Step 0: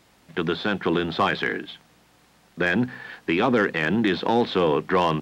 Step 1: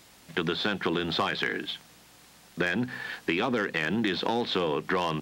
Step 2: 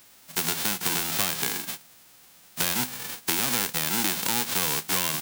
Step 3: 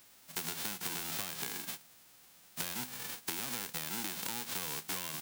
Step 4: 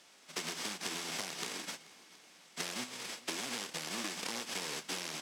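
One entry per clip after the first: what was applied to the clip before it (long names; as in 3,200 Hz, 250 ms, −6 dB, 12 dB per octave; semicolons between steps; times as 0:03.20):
high-shelf EQ 3,000 Hz +9 dB; downward compressor, threshold −24 dBFS, peak gain reduction 9 dB
spectral envelope flattened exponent 0.1; level +1.5 dB
downward compressor, threshold −28 dBFS, peak gain reduction 8.5 dB; level −6.5 dB
samples in bit-reversed order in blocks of 32 samples; band-pass filter 240–6,100 Hz; feedback echo with a long and a short gap by turns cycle 721 ms, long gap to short 1.5 to 1, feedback 36%, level −21.5 dB; level +4.5 dB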